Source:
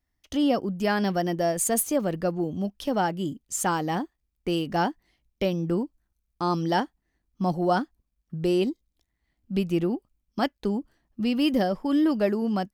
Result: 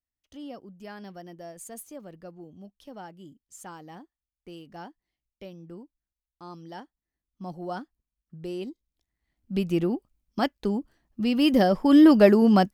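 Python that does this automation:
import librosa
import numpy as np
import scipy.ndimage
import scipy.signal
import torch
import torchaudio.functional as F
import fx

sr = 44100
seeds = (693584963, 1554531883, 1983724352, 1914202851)

y = fx.gain(x, sr, db=fx.line((6.74, -17.5), (7.66, -11.0), (8.58, -11.0), (9.69, 0.0), (11.23, 0.0), (12.05, 8.0)))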